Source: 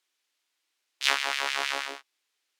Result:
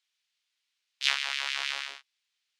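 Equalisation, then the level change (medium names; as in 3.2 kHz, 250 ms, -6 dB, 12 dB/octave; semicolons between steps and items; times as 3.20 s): band-pass filter 3.5 kHz, Q 0.82; 0.0 dB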